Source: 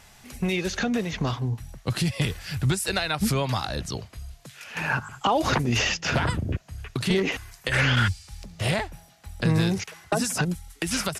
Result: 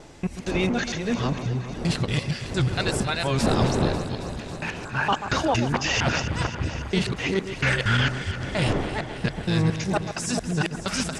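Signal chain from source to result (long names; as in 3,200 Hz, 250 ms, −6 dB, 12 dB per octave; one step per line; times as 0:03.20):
reversed piece by piece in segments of 231 ms
wind on the microphone 470 Hz −34 dBFS
low-pass filter 8,800 Hz 24 dB per octave
delay that swaps between a low-pass and a high-pass 136 ms, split 1,600 Hz, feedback 84%, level −10 dB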